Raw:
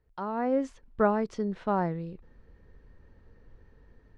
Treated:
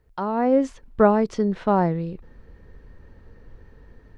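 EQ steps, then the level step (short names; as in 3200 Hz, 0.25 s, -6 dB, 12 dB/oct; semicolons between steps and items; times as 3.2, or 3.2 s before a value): dynamic EQ 1500 Hz, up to -4 dB, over -40 dBFS, Q 1.3; +8.5 dB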